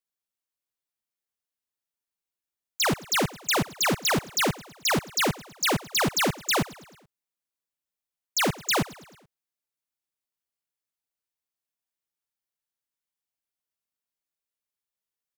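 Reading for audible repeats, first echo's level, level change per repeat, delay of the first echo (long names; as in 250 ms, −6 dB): 3, −20.5 dB, −5.0 dB, 108 ms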